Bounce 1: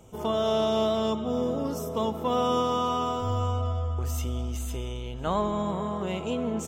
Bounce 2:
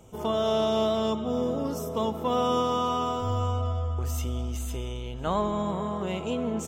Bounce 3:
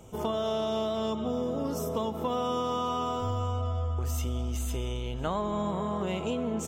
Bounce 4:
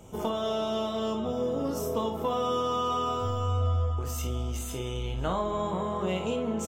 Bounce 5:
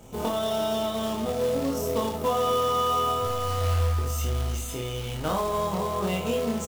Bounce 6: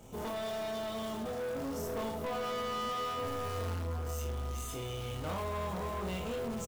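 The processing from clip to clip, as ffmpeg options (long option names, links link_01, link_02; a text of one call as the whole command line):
ffmpeg -i in.wav -af anull out.wav
ffmpeg -i in.wav -af "acompressor=threshold=-29dB:ratio=6,volume=2dB" out.wav
ffmpeg -i in.wav -af "aecho=1:1:22|56:0.447|0.422" out.wav
ffmpeg -i in.wav -filter_complex "[0:a]acrusher=bits=3:mode=log:mix=0:aa=0.000001,asplit=2[link_01][link_02];[link_02]adelay=26,volume=-4dB[link_03];[link_01][link_03]amix=inputs=2:normalize=0,volume=1dB" out.wav
ffmpeg -i in.wav -filter_complex "[0:a]asoftclip=type=tanh:threshold=-29dB,asplit=2[link_01][link_02];[link_02]adelay=1633,volume=-7dB,highshelf=frequency=4000:gain=-36.7[link_03];[link_01][link_03]amix=inputs=2:normalize=0,volume=-5dB" out.wav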